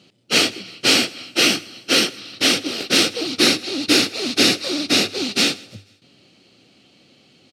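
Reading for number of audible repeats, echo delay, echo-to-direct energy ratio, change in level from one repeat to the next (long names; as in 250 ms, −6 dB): 2, 160 ms, −22.5 dB, −7.5 dB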